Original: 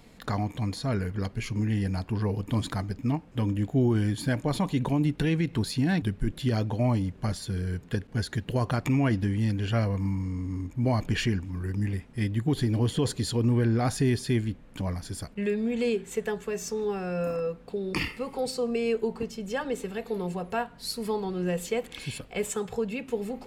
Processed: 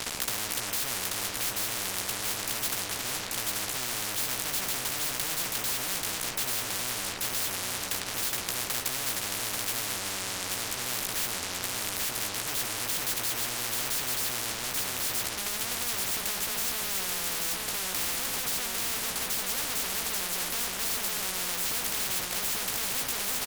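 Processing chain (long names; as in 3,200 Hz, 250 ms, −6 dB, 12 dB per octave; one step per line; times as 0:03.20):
fuzz pedal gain 47 dB, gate −51 dBFS
double-tracking delay 16 ms −5 dB
single-tap delay 835 ms −5.5 dB
every bin compressed towards the loudest bin 10 to 1
level −7.5 dB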